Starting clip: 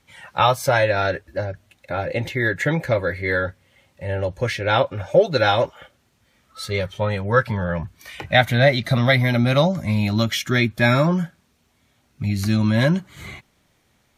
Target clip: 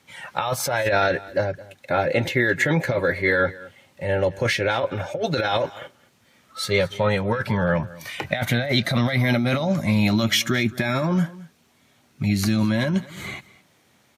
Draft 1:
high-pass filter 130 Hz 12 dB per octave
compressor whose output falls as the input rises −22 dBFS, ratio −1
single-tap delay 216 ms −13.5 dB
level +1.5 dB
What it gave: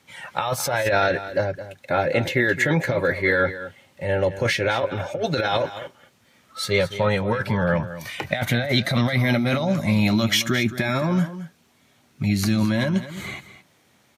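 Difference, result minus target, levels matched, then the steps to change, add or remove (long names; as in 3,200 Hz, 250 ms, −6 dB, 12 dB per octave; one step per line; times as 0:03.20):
echo-to-direct +6.5 dB
change: single-tap delay 216 ms −20 dB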